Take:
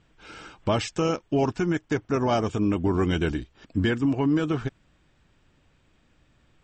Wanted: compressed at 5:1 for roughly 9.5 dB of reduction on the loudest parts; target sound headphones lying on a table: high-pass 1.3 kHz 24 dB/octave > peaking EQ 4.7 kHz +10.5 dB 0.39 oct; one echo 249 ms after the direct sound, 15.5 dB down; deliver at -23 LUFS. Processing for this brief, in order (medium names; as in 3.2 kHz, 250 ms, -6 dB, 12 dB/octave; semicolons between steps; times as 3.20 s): compression 5:1, threshold -30 dBFS; high-pass 1.3 kHz 24 dB/octave; peaking EQ 4.7 kHz +10.5 dB 0.39 oct; delay 249 ms -15.5 dB; trim +21 dB